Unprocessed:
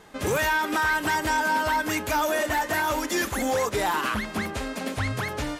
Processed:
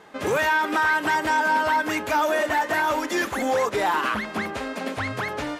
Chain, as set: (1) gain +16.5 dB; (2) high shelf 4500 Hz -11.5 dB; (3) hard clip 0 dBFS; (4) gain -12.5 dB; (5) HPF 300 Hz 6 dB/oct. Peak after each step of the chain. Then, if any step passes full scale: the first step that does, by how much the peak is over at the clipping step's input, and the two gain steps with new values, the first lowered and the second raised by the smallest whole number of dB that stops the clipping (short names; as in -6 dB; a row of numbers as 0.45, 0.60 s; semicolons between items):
-2.0, -2.0, -2.0, -14.5, -14.0 dBFS; no overload